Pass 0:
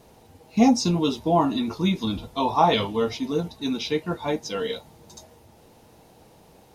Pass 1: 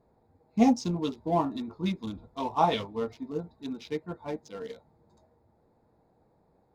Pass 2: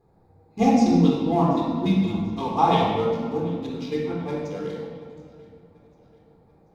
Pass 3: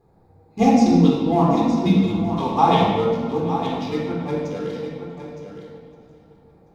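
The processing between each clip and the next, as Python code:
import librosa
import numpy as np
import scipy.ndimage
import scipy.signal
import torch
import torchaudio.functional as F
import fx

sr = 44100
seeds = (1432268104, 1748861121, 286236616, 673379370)

y1 = fx.wiener(x, sr, points=15)
y1 = fx.upward_expand(y1, sr, threshold_db=-32.0, expansion=1.5)
y1 = y1 * 10.0 ** (-3.5 / 20.0)
y2 = fx.echo_feedback(y1, sr, ms=736, feedback_pct=46, wet_db=-21.5)
y2 = fx.room_shoebox(y2, sr, seeds[0], volume_m3=2200.0, walls='mixed', distance_m=3.9)
y3 = y2 + 10.0 ** (-10.0 / 20.0) * np.pad(y2, (int(914 * sr / 1000.0), 0))[:len(y2)]
y3 = y3 * 10.0 ** (3.0 / 20.0)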